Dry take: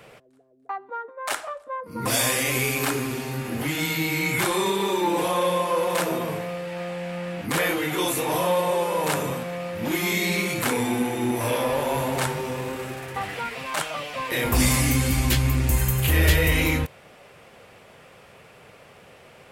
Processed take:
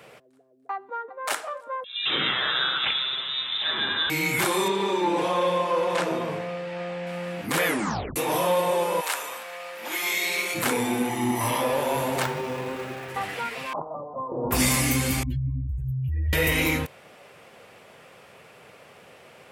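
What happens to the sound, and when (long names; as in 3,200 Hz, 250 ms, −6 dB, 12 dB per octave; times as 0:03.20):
0:00.75–0:01.25: delay throw 350 ms, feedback 45%, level −9.5 dB
0:01.84–0:04.10: voice inversion scrambler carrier 3,800 Hz
0:04.68–0:07.07: high-frequency loss of the air 77 metres
0:07.66: tape stop 0.50 s
0:09.00–0:10.54: high-pass filter 1,100 Hz → 510 Hz
0:11.09–0:11.61: comb filter 1 ms
0:12.22–0:13.10: running median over 5 samples
0:13.73–0:14.51: Butterworth low-pass 1,100 Hz 72 dB per octave
0:15.23–0:16.33: expanding power law on the bin magnitudes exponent 2.9
whole clip: high-pass filter 160 Hz 6 dB per octave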